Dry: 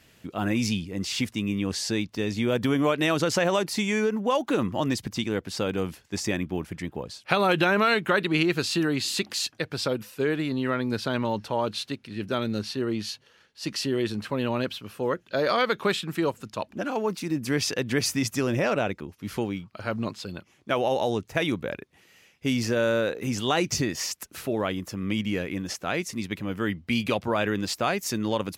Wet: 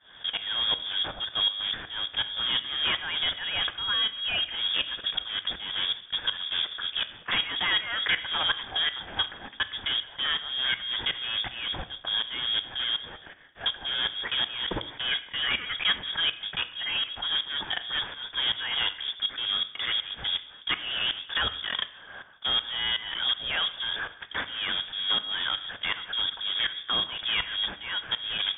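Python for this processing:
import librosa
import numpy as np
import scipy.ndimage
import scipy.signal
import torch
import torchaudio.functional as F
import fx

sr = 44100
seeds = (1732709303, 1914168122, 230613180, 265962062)

p1 = fx.block_float(x, sr, bits=3)
p2 = scipy.signal.sosfilt(scipy.signal.butter(2, 58.0, 'highpass', fs=sr, output='sos'), p1)
p3 = fx.low_shelf_res(p2, sr, hz=290.0, db=7.0, q=1.5)
p4 = fx.hpss(p3, sr, part='harmonic', gain_db=-5)
p5 = fx.peak_eq(p4, sr, hz=1900.0, db=10.5, octaves=0.35)
p6 = fx.over_compress(p5, sr, threshold_db=-37.0, ratio=-1.0)
p7 = p5 + F.gain(torch.from_numpy(p6), 1.5).numpy()
p8 = 10.0 ** (-17.5 / 20.0) * np.tanh(p7 / 10.0 ** (-17.5 / 20.0))
p9 = fx.tremolo_shape(p8, sr, shape='saw_up', hz=2.7, depth_pct=95)
p10 = fx.rev_plate(p9, sr, seeds[0], rt60_s=0.77, hf_ratio=0.9, predelay_ms=0, drr_db=11.0)
y = fx.freq_invert(p10, sr, carrier_hz=3500)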